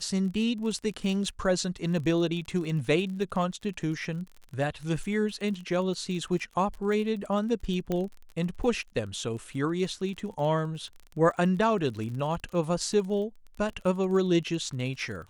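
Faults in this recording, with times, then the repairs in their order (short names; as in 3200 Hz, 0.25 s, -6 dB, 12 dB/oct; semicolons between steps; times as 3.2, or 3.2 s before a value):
crackle 30/s -36 dBFS
7.92 pop -17 dBFS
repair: de-click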